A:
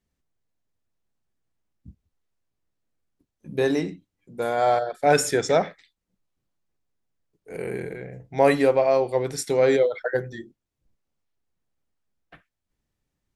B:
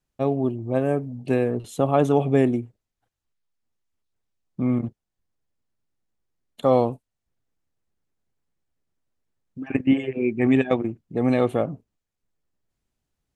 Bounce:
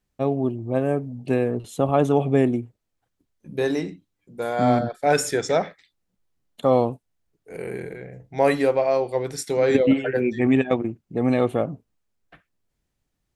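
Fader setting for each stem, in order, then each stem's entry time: −1.0, 0.0 decibels; 0.00, 0.00 seconds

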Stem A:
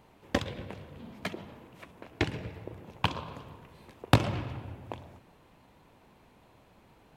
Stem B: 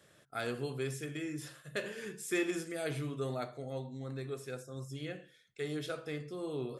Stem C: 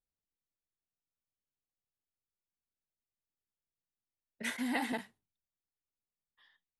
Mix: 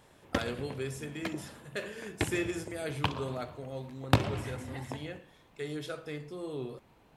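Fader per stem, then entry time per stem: −2.5, 0.0, −12.0 decibels; 0.00, 0.00, 0.00 seconds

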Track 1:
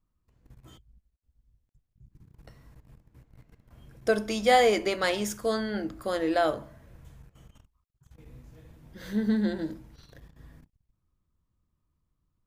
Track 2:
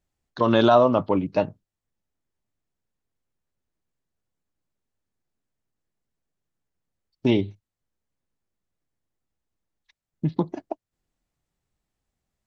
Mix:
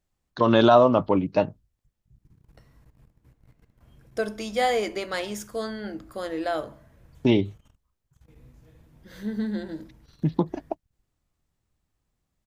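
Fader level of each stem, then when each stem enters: −3.0, +0.5 decibels; 0.10, 0.00 seconds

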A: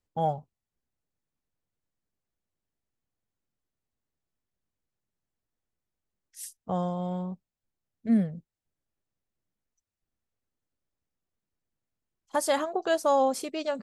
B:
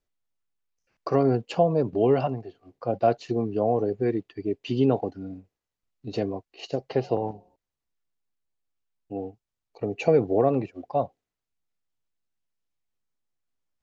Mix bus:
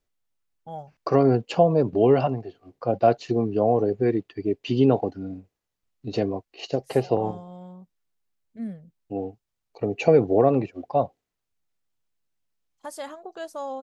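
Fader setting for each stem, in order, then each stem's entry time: −10.0, +3.0 decibels; 0.50, 0.00 seconds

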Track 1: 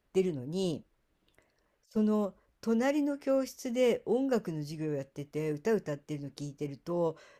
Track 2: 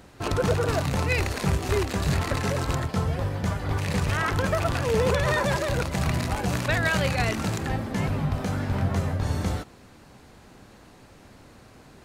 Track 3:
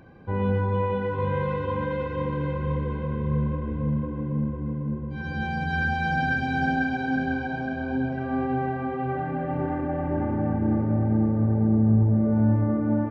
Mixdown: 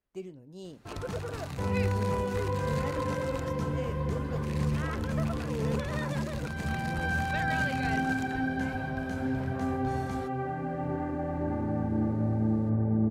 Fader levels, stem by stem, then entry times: −12.0, −12.0, −5.0 decibels; 0.00, 0.65, 1.30 seconds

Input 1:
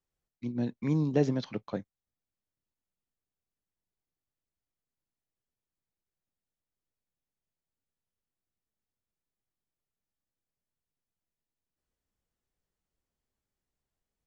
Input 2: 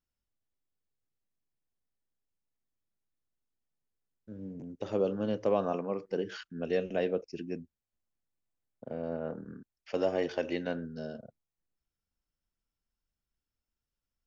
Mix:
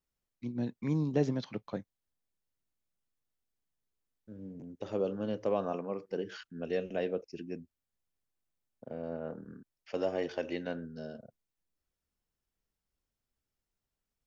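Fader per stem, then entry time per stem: −3.0, −3.0 decibels; 0.00, 0.00 seconds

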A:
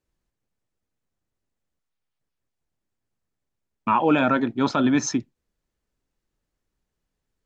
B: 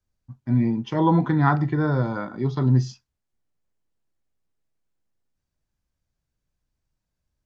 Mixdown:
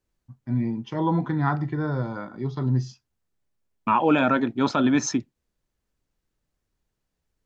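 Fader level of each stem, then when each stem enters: −0.5, −4.5 decibels; 0.00, 0.00 seconds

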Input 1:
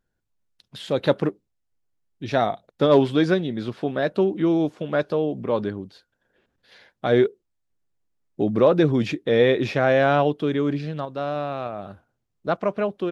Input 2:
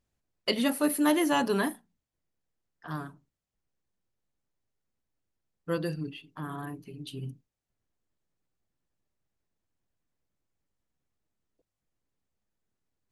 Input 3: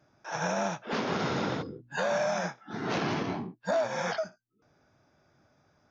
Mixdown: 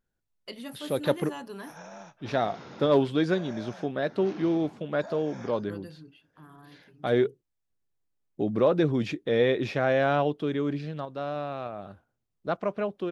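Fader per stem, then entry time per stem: −5.5, −13.5, −15.0 decibels; 0.00, 0.00, 1.35 seconds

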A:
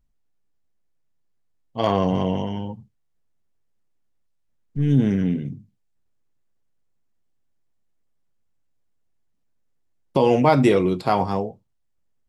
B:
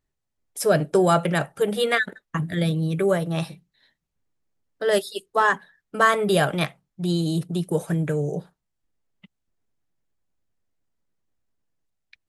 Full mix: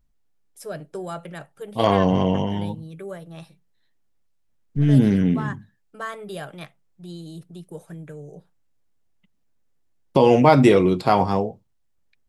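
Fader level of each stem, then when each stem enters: +2.5, −14.0 decibels; 0.00, 0.00 seconds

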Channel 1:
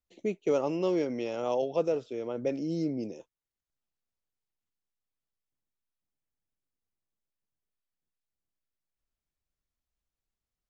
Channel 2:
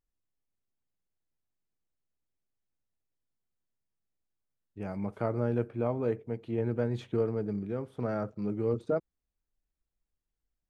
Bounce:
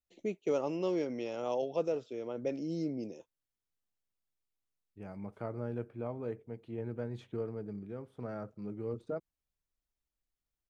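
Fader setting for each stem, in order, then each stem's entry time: −4.5, −8.5 decibels; 0.00, 0.20 seconds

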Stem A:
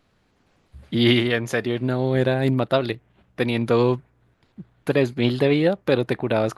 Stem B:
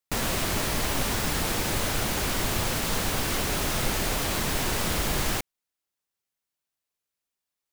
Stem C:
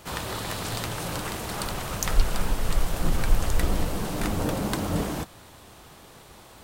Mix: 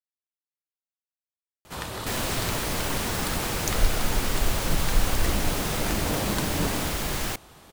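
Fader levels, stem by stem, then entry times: muted, −2.0 dB, −2.0 dB; muted, 1.95 s, 1.65 s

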